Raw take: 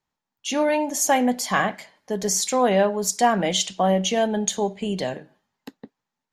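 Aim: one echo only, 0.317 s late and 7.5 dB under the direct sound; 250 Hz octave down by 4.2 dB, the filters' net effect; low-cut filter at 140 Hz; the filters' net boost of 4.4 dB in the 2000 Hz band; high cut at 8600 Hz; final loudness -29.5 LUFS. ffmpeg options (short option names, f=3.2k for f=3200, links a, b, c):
-af "highpass=140,lowpass=8.6k,equalizer=f=250:t=o:g=-4.5,equalizer=f=2k:t=o:g=5.5,aecho=1:1:317:0.422,volume=-8dB"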